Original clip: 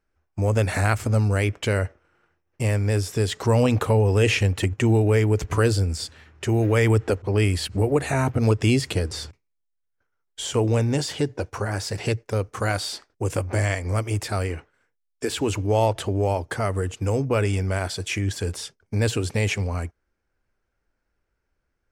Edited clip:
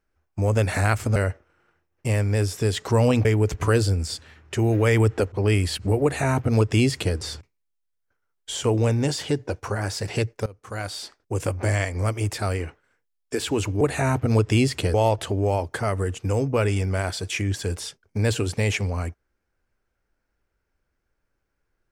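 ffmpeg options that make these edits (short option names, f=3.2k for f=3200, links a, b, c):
-filter_complex "[0:a]asplit=6[a][b][c][d][e][f];[a]atrim=end=1.162[g];[b]atrim=start=1.708:end=3.802[h];[c]atrim=start=5.148:end=12.36,asetpts=PTS-STARTPTS,afade=t=out:st=7.208:d=0.004:c=hsin:silence=0.0794328[i];[d]atrim=start=12.36:end=15.712,asetpts=PTS-STARTPTS,afade=t=in:d=1.27:c=qsin:silence=0.0794328[j];[e]atrim=start=7.928:end=9.062[k];[f]atrim=start=15.708[l];[g][h]acrossfade=d=0.004:c1=hsin:c2=hsin[m];[i][j]concat=n=2:v=0:a=1[n];[m][n]acrossfade=d=0.004:c1=hsin:c2=hsin[o];[o][k]acrossfade=d=0.004:c1=hsin:c2=hsin[p];[p][l]acrossfade=d=0.004:c1=hsin:c2=hsin"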